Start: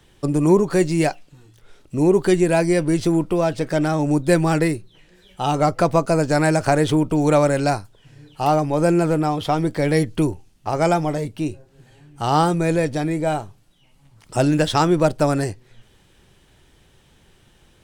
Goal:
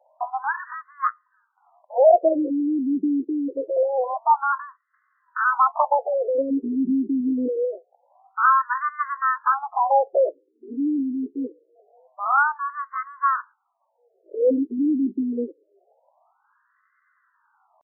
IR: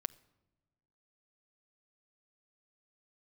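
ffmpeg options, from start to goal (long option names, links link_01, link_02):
-af "asetrate=76340,aresample=44100,atempo=0.577676,afftfilt=real='re*between(b*sr/1024,290*pow(1500/290,0.5+0.5*sin(2*PI*0.25*pts/sr))/1.41,290*pow(1500/290,0.5+0.5*sin(2*PI*0.25*pts/sr))*1.41)':imag='im*between(b*sr/1024,290*pow(1500/290,0.5+0.5*sin(2*PI*0.25*pts/sr))/1.41,290*pow(1500/290,0.5+0.5*sin(2*PI*0.25*pts/sr))*1.41)':win_size=1024:overlap=0.75,volume=2.5dB"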